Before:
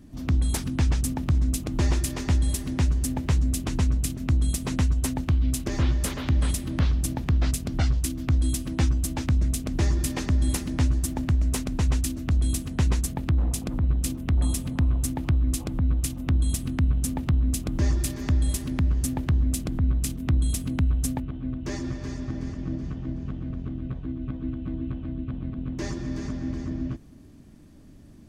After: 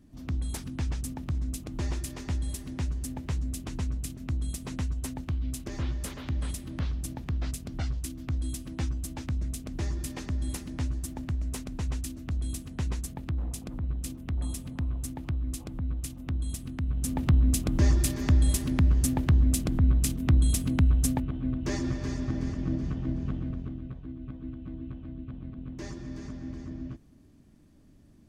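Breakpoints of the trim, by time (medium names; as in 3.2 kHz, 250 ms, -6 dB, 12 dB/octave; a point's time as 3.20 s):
16.84 s -8.5 dB
17.24 s +1 dB
23.36 s +1 dB
23.95 s -8 dB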